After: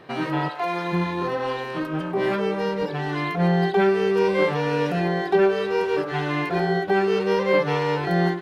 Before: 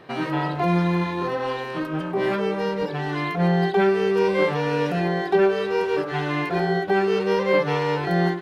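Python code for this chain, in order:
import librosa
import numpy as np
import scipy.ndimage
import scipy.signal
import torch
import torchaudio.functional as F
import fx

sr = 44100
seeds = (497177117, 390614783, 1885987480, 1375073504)

y = fx.highpass(x, sr, hz=fx.line((0.48, 840.0), (0.92, 320.0)), slope=12, at=(0.48, 0.92), fade=0.02)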